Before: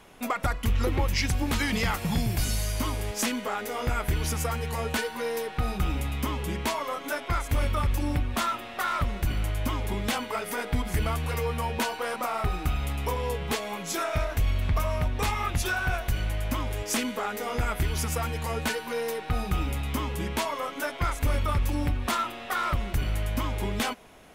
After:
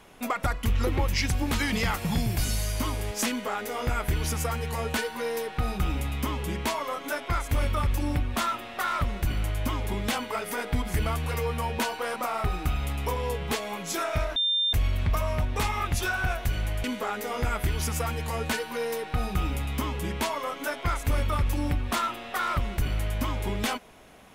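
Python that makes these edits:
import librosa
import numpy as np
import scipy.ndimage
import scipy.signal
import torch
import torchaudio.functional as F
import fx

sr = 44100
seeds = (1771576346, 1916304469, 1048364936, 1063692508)

y = fx.edit(x, sr, fx.insert_tone(at_s=14.36, length_s=0.37, hz=3600.0, db=-22.0),
    fx.cut(start_s=16.47, length_s=0.53), tone=tone)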